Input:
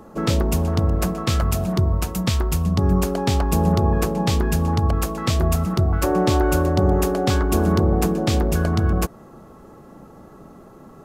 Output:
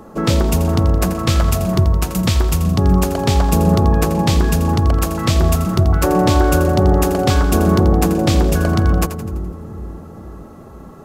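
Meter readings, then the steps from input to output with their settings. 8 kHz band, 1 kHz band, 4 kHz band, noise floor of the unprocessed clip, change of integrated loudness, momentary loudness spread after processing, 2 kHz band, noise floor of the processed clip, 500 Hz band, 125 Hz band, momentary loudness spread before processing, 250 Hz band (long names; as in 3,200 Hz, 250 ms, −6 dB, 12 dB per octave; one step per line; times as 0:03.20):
+5.0 dB, +5.0 dB, +5.0 dB, −45 dBFS, +5.0 dB, 8 LU, +5.0 dB, −38 dBFS, +4.0 dB, +5.0 dB, 4 LU, +5.0 dB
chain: echo with a time of its own for lows and highs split 390 Hz, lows 465 ms, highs 84 ms, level −11 dB
level +4.5 dB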